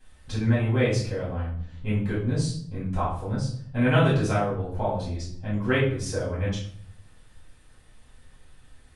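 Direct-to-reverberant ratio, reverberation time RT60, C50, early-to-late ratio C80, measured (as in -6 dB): -9.0 dB, 0.60 s, 4.5 dB, 8.5 dB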